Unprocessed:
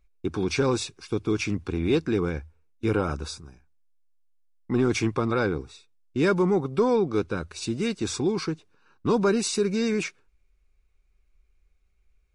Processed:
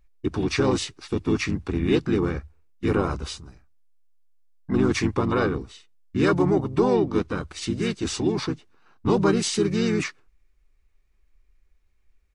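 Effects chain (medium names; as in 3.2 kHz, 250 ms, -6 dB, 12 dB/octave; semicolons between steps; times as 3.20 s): harmony voices -12 st -13 dB, -4 st -3 dB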